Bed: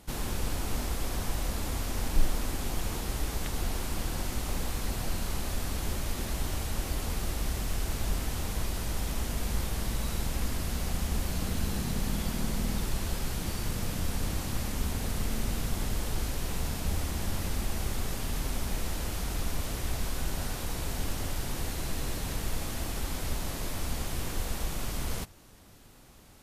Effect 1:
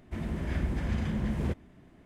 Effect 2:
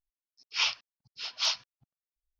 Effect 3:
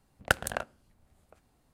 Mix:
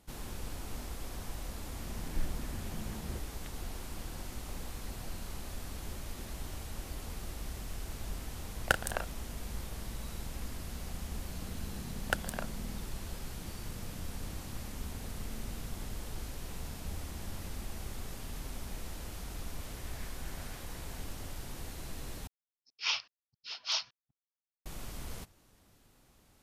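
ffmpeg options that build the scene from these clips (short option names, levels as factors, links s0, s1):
-filter_complex "[1:a]asplit=2[s0][s1];[3:a]asplit=2[s2][s3];[0:a]volume=0.335[s4];[s2]asplit=2[s5][s6];[s6]adelay=34,volume=0.316[s7];[s5][s7]amix=inputs=2:normalize=0[s8];[s1]highpass=1000[s9];[2:a]agate=range=0.0224:threshold=0.00126:ratio=3:release=100:detection=peak[s10];[s4]asplit=2[s11][s12];[s11]atrim=end=22.274[s13];[s10]atrim=end=2.39,asetpts=PTS-STARTPTS,volume=0.596[s14];[s12]atrim=start=24.656[s15];[s0]atrim=end=2.05,asetpts=PTS-STARTPTS,volume=0.237,afade=t=in:d=0.004:c=hsin,afade=t=out:st=2.046:d=0.004:c=hsin,adelay=1660[s16];[s8]atrim=end=1.73,asetpts=PTS-STARTPTS,volume=0.708,afade=t=in:d=0.004:c=hsin,afade=t=out:st=1.726:d=0.004:c=hsin,adelay=8400[s17];[s3]atrim=end=1.73,asetpts=PTS-STARTPTS,volume=0.447,afade=t=in:d=0.004:c=hsin,afade=t=out:st=1.726:d=0.004:c=hsin,adelay=11820[s18];[s9]atrim=end=2.05,asetpts=PTS-STARTPTS,volume=0.316,afade=t=in:d=0.004:c=hsin,afade=t=out:st=2.046:d=0.004:c=hsin,adelay=19480[s19];[s13][s14]acrossfade=d=0.004:c1=hsin:c2=hsin[s20];[s20][s15]acrossfade=d=0.004:c1=hsin:c2=hsin[s21];[s21][s16][s17][s18][s19]amix=inputs=5:normalize=0"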